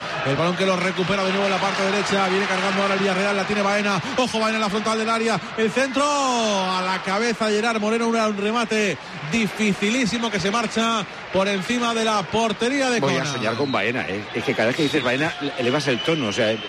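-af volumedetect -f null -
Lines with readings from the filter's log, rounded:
mean_volume: -21.5 dB
max_volume: -7.8 dB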